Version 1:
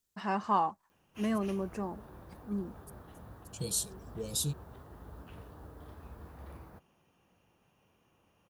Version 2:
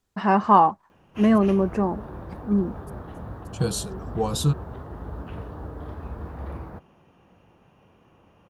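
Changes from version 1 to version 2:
second voice: remove linear-phase brick-wall band-stop 670–2,200 Hz
master: remove first-order pre-emphasis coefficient 0.8

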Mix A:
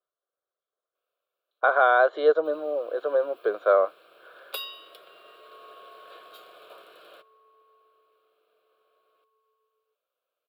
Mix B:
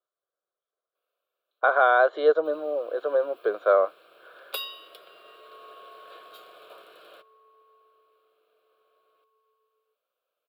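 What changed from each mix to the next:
second sound: send on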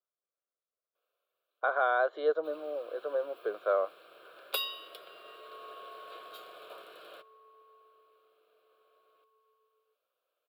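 speech −8.5 dB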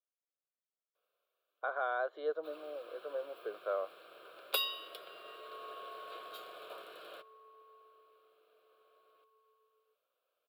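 speech −7.5 dB

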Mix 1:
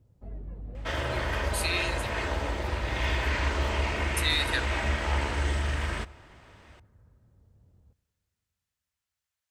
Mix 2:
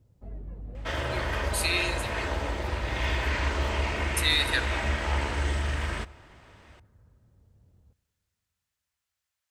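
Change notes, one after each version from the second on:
speech: send +11.5 dB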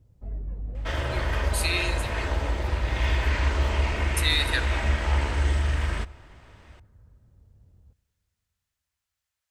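master: add low-shelf EQ 66 Hz +11 dB

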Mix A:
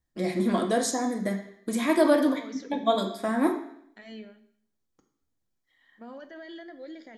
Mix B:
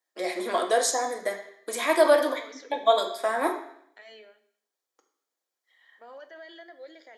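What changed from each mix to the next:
first voice +4.0 dB
master: add high-pass filter 440 Hz 24 dB per octave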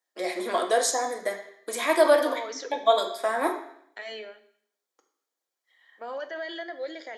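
second voice +10.5 dB

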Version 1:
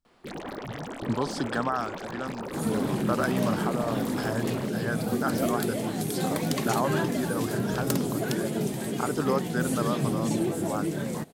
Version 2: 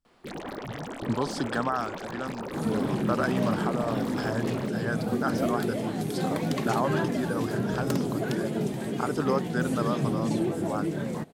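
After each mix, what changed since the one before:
second sound: add high-shelf EQ 5,200 Hz −11 dB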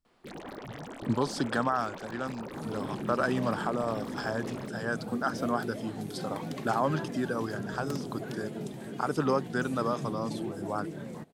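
first sound −5.5 dB
second sound −9.0 dB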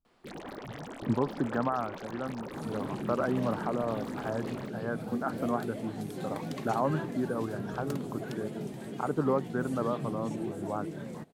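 speech: add low-pass filter 1,100 Hz 12 dB per octave

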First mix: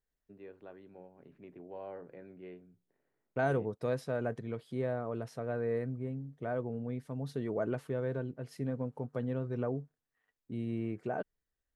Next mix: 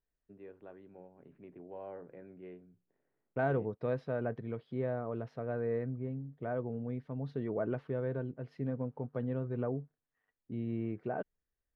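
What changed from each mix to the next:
master: add high-frequency loss of the air 300 metres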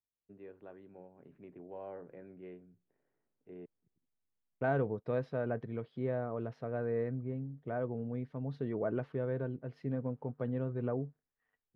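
second voice: entry +1.25 s

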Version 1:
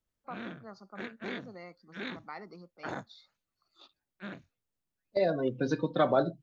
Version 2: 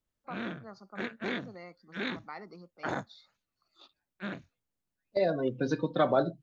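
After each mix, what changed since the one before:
background +4.5 dB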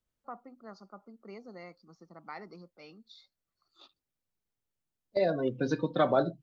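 background: muted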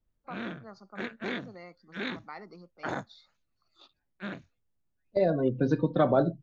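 second voice: add spectral tilt −2.5 dB per octave
background: unmuted

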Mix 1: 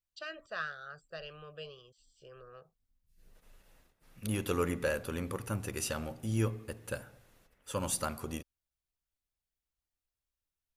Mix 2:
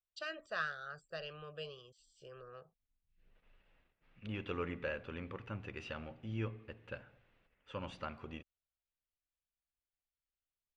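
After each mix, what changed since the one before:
second voice: add transistor ladder low-pass 3,300 Hz, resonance 40%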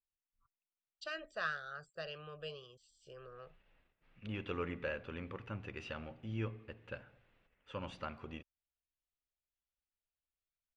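first voice: entry +0.85 s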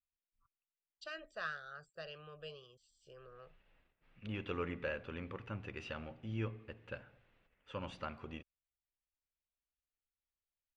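first voice −3.5 dB

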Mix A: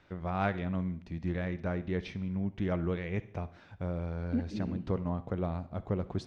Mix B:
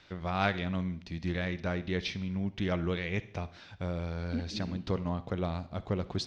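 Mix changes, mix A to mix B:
second voice −4.0 dB
master: add parametric band 4,500 Hz +14 dB 1.9 octaves

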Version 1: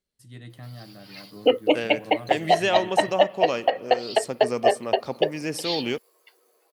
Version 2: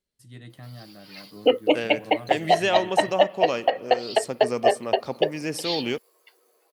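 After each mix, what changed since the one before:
first voice: send off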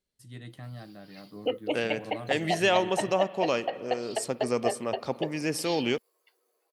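background −10.5 dB

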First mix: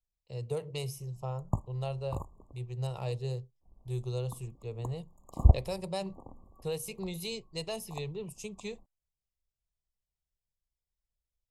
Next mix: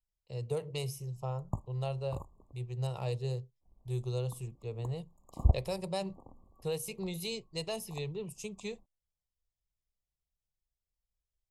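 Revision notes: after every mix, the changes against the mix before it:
background −5.0 dB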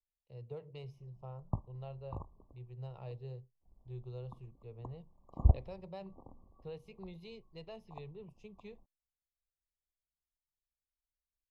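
speech −10.0 dB
master: add high-frequency loss of the air 300 metres

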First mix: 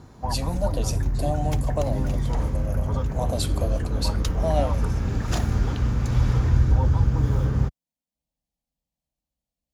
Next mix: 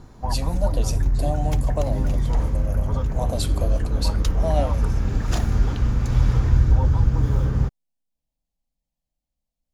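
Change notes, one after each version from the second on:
master: remove high-pass filter 54 Hz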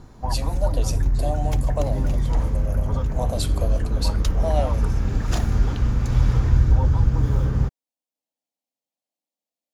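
speech: add high-pass filter 280 Hz 24 dB per octave

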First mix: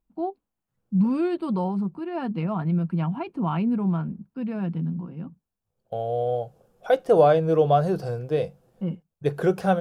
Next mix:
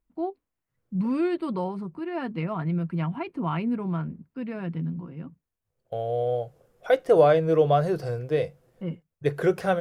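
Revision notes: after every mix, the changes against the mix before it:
master: add thirty-one-band graphic EQ 200 Hz −9 dB, 800 Hz −5 dB, 2,000 Hz +8 dB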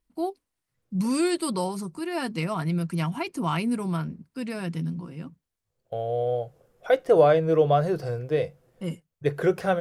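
first voice: remove high-frequency loss of the air 480 metres

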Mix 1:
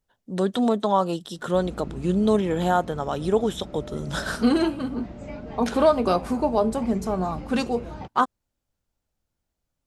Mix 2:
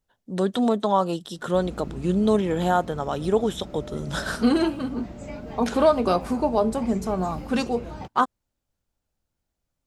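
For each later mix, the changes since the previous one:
background: remove high-frequency loss of the air 92 metres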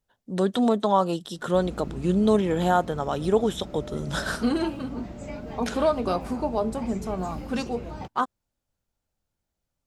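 second voice −4.5 dB

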